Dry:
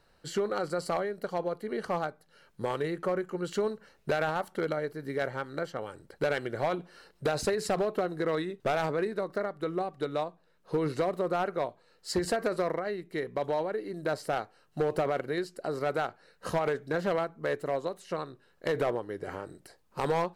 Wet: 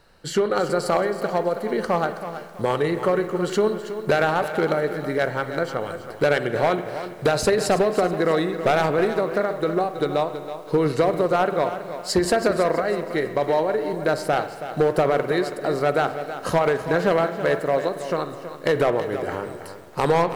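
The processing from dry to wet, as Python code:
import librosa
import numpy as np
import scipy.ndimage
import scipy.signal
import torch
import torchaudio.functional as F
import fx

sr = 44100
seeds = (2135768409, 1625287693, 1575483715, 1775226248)

y = fx.rev_spring(x, sr, rt60_s=1.9, pass_ms=(48,), chirp_ms=40, drr_db=11.0)
y = fx.echo_crushed(y, sr, ms=325, feedback_pct=35, bits=9, wet_db=-11)
y = y * 10.0 ** (9.0 / 20.0)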